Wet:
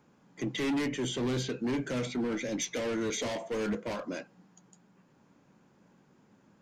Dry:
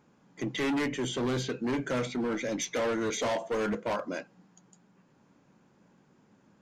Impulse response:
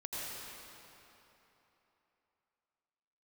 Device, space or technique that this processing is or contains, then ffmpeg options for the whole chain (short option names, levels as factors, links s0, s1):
one-band saturation: -filter_complex "[0:a]acrossover=split=460|2300[s0][s1][s2];[s1]asoftclip=type=tanh:threshold=0.0112[s3];[s0][s3][s2]amix=inputs=3:normalize=0"